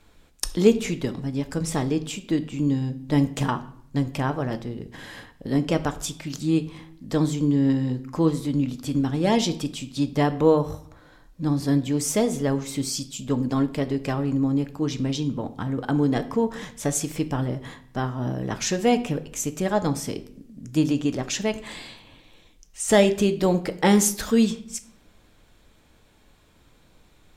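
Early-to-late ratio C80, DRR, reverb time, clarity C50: 18.5 dB, 9.0 dB, 0.60 s, 15.0 dB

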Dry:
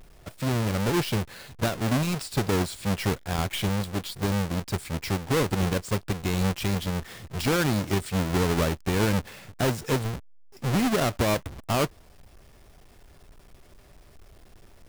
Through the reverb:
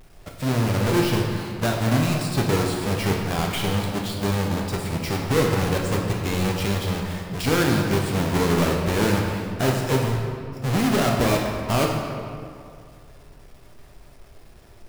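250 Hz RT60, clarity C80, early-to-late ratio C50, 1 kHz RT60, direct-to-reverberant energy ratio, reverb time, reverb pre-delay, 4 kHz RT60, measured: 2.4 s, 3.5 dB, 2.5 dB, 2.2 s, −0.5 dB, 2.3 s, 8 ms, 1.4 s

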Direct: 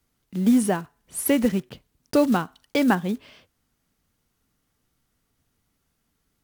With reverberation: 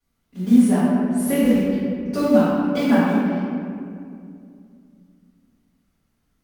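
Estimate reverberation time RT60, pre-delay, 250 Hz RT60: 2.4 s, 3 ms, 3.2 s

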